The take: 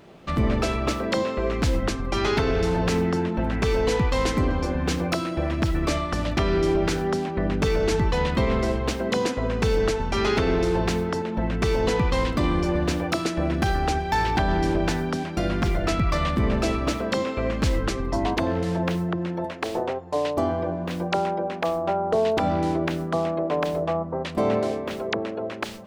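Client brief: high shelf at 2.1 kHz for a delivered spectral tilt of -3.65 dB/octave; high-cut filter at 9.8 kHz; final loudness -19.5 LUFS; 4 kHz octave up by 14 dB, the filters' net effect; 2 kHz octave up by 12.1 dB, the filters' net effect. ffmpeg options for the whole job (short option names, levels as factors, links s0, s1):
-af "lowpass=9800,equalizer=f=2000:t=o:g=9,highshelf=f=2100:g=6,equalizer=f=4000:t=o:g=9"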